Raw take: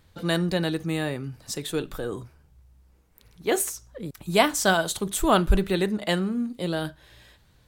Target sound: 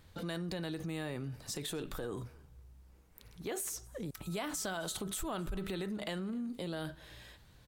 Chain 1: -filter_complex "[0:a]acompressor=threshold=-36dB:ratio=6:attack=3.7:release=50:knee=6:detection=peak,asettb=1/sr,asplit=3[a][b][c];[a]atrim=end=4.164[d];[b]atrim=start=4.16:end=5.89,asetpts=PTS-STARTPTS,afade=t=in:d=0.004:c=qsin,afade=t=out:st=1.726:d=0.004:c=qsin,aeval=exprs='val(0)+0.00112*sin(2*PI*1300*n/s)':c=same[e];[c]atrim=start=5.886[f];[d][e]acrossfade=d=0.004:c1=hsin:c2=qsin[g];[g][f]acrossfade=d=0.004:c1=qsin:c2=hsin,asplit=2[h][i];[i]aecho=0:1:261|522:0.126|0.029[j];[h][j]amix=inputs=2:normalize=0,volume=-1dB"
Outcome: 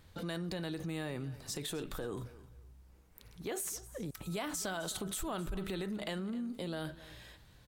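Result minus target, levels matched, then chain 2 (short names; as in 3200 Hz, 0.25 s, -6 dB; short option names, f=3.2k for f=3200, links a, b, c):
echo-to-direct +7.5 dB
-filter_complex "[0:a]acompressor=threshold=-36dB:ratio=6:attack=3.7:release=50:knee=6:detection=peak,asettb=1/sr,asplit=3[a][b][c];[a]atrim=end=4.164[d];[b]atrim=start=4.16:end=5.89,asetpts=PTS-STARTPTS,afade=t=in:d=0.004:c=qsin,afade=t=out:st=1.726:d=0.004:c=qsin,aeval=exprs='val(0)+0.00112*sin(2*PI*1300*n/s)':c=same[e];[c]atrim=start=5.886[f];[d][e]acrossfade=d=0.004:c1=hsin:c2=qsin[g];[g][f]acrossfade=d=0.004:c1=qsin:c2=hsin,asplit=2[h][i];[i]aecho=0:1:261|522:0.0531|0.0122[j];[h][j]amix=inputs=2:normalize=0,volume=-1dB"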